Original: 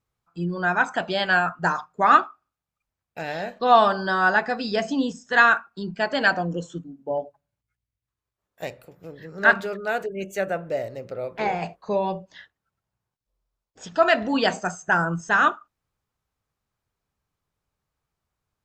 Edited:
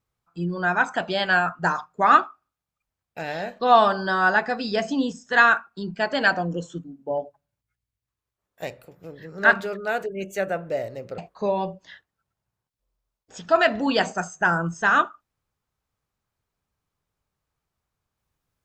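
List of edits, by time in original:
0:11.18–0:11.65: remove

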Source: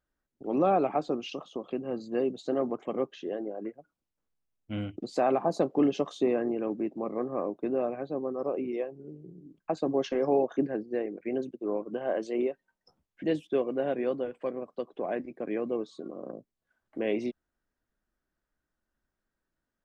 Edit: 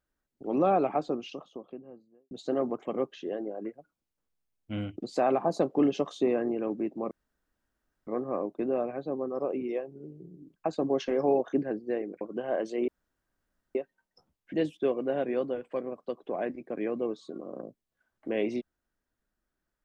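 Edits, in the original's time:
0:00.87–0:02.31: fade out and dull
0:07.11: splice in room tone 0.96 s
0:11.25–0:11.78: remove
0:12.45: splice in room tone 0.87 s

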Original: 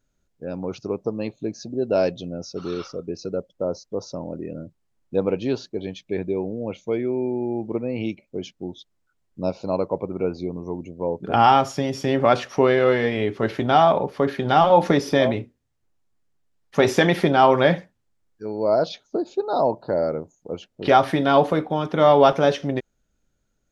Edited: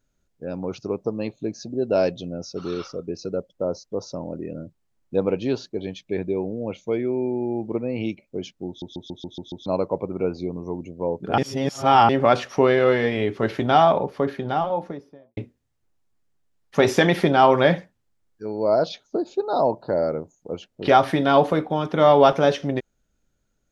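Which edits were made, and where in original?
0:08.68: stutter in place 0.14 s, 7 plays
0:11.38–0:12.09: reverse
0:13.77–0:15.37: fade out and dull

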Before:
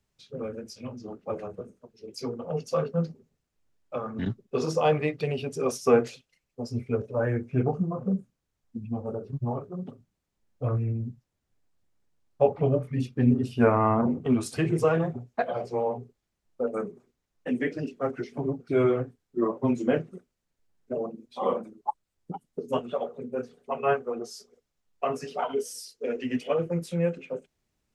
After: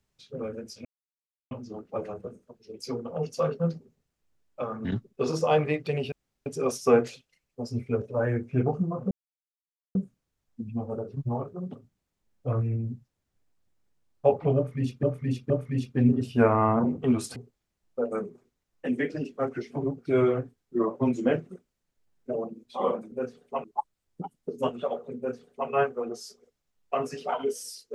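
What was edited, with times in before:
0:00.85: splice in silence 0.66 s
0:05.46: splice in room tone 0.34 s
0:08.11: splice in silence 0.84 s
0:12.72–0:13.19: repeat, 3 plays
0:14.58–0:15.98: remove
0:23.28–0:23.80: duplicate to 0:21.74

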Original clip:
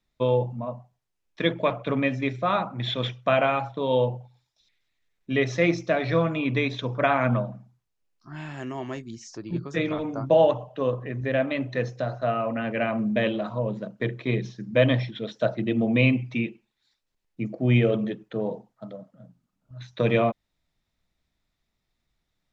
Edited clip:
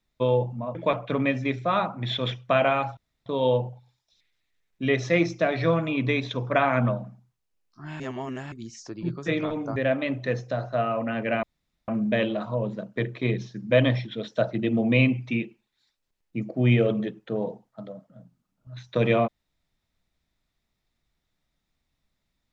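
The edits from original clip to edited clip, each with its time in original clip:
0:00.75–0:01.52: remove
0:03.74: splice in room tone 0.29 s
0:08.48–0:09.00: reverse
0:10.24–0:11.25: remove
0:12.92: splice in room tone 0.45 s

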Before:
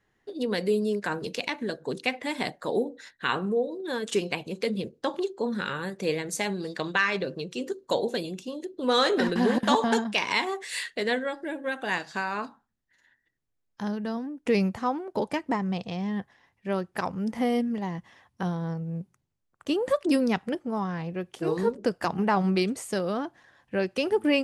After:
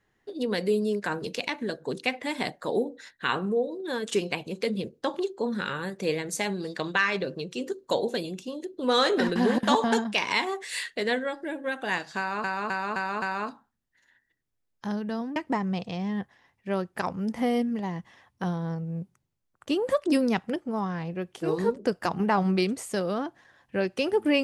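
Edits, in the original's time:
0:12.18–0:12.44: repeat, 5 plays
0:14.32–0:15.35: remove

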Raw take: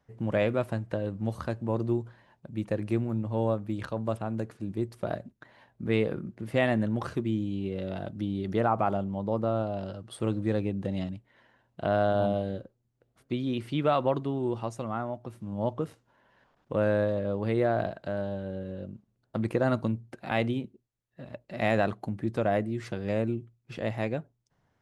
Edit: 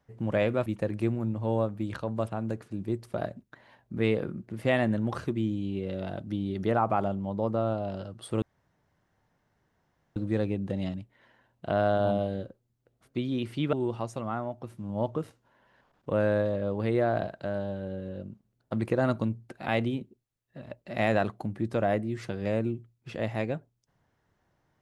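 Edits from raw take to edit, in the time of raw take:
0:00.66–0:02.55: remove
0:10.31: splice in room tone 1.74 s
0:13.88–0:14.36: remove

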